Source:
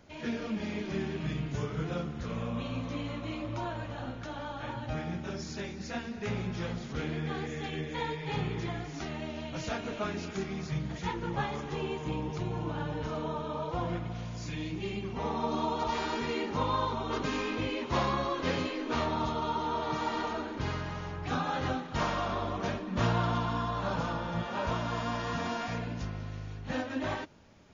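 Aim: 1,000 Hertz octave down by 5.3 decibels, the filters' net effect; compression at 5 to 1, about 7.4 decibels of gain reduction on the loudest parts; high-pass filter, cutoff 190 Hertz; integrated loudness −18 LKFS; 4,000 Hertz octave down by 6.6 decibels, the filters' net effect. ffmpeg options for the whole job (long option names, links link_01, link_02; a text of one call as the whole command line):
ffmpeg -i in.wav -af "highpass=190,equalizer=frequency=1000:width_type=o:gain=-6,equalizer=frequency=4000:width_type=o:gain=-8.5,acompressor=threshold=-37dB:ratio=5,volume=23.5dB" out.wav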